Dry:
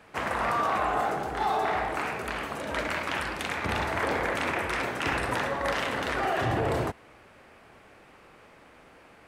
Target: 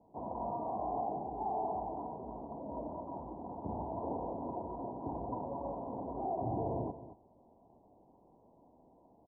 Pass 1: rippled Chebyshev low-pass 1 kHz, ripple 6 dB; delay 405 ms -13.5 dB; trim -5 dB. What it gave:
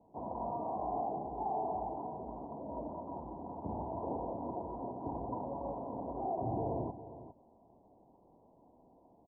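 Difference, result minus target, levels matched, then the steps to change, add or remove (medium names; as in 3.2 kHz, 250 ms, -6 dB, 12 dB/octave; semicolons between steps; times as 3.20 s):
echo 181 ms late
change: delay 224 ms -13.5 dB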